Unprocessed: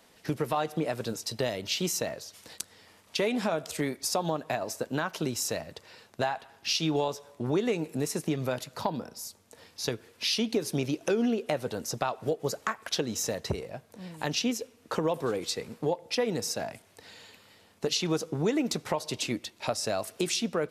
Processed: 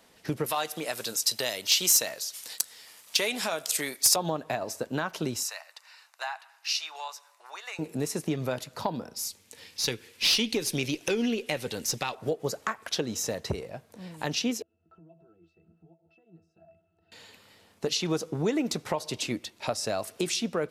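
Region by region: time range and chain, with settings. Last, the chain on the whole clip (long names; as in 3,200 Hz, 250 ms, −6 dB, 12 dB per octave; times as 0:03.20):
0:00.46–0:04.16: spectral tilt +4 dB per octave + hard clipping −13.5 dBFS
0:05.43–0:07.79: inverse Chebyshev high-pass filter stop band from 200 Hz, stop band 70 dB + notch filter 3,300 Hz, Q 7.8
0:09.16–0:12.15: high shelf with overshoot 1,700 Hz +7 dB, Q 1.5 + notch filter 660 Hz, Q 6.9 + tube saturation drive 16 dB, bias 0.25
0:14.62–0:17.12: downward compressor 3 to 1, threshold −47 dBFS + resonances in every octave E, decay 0.16 s
whole clip: no processing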